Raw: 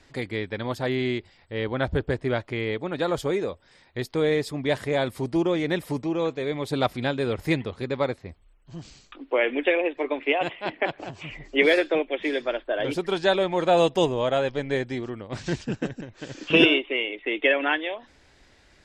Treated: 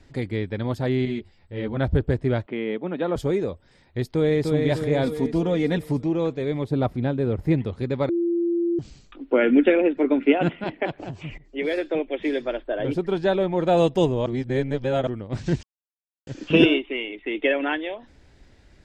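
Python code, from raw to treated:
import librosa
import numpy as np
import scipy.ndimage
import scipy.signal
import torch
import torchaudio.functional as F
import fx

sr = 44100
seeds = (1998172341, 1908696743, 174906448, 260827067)

y = fx.ensemble(x, sr, at=(1.05, 1.77))
y = fx.ellip_bandpass(y, sr, low_hz=190.0, high_hz=3200.0, order=3, stop_db=40, at=(2.46, 3.16))
y = fx.echo_throw(y, sr, start_s=4.12, length_s=0.41, ms=300, feedback_pct=55, wet_db=-3.5)
y = fx.comb(y, sr, ms=4.2, depth=0.65, at=(5.03, 5.78))
y = fx.high_shelf(y, sr, hz=2100.0, db=-11.5, at=(6.64, 7.58))
y = fx.small_body(y, sr, hz=(210.0, 1400.0), ring_ms=30, db=15, at=(9.31, 10.64))
y = fx.high_shelf(y, sr, hz=3800.0, db=-9.0, at=(12.74, 13.67))
y = fx.peak_eq(y, sr, hz=530.0, db=-7.0, octaves=0.6, at=(16.77, 17.35))
y = fx.edit(y, sr, fx.bleep(start_s=8.09, length_s=0.7, hz=342.0, db=-22.5),
    fx.fade_in_from(start_s=11.38, length_s=0.8, floor_db=-18.0),
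    fx.reverse_span(start_s=14.26, length_s=0.81),
    fx.silence(start_s=15.63, length_s=0.64), tone=tone)
y = fx.low_shelf(y, sr, hz=400.0, db=12.0)
y = fx.notch(y, sr, hz=1100.0, q=26.0)
y = F.gain(torch.from_numpy(y), -4.0).numpy()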